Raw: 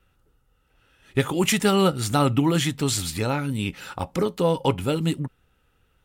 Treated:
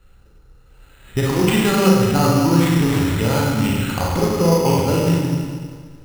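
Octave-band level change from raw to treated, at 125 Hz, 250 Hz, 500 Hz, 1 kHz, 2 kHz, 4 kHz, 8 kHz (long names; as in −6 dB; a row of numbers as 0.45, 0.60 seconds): +8.0, +7.5, +5.5, +5.0, +5.0, +2.0, +2.0 decibels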